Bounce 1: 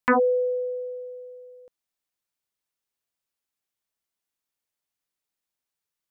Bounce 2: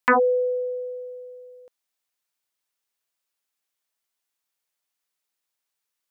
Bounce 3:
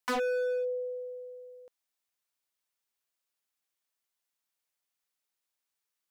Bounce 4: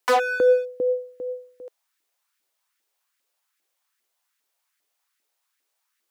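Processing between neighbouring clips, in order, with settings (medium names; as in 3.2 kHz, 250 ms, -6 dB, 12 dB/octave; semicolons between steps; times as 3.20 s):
bass shelf 320 Hz -11.5 dB; trim +4.5 dB
hard clipper -24.5 dBFS, distortion -6 dB; trim -4 dB
LFO high-pass saw up 2.5 Hz 300–1900 Hz; trim +8.5 dB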